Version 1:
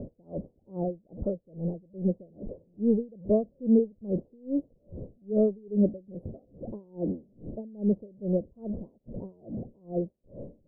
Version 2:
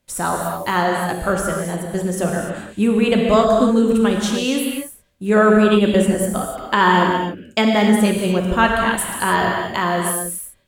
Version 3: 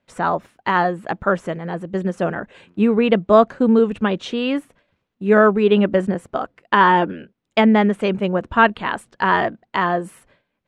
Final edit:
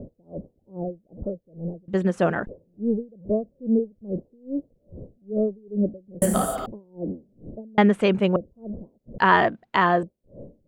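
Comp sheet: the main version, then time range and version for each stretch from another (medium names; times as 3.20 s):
1
1.88–2.47 s: from 3
6.22–6.66 s: from 2
7.78–8.36 s: from 3
9.18–10.03 s: from 3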